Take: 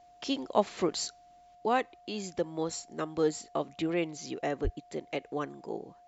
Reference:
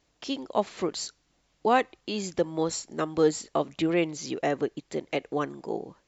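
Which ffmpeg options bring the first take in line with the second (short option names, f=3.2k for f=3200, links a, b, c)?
-filter_complex "[0:a]bandreject=f=710:w=30,asplit=3[a][b][c];[a]afade=t=out:st=4.63:d=0.02[d];[b]highpass=f=140:w=0.5412,highpass=f=140:w=1.3066,afade=t=in:st=4.63:d=0.02,afade=t=out:st=4.75:d=0.02[e];[c]afade=t=in:st=4.75:d=0.02[f];[d][e][f]amix=inputs=3:normalize=0,asetnsamples=n=441:p=0,asendcmd='1.55 volume volume 5.5dB',volume=0dB"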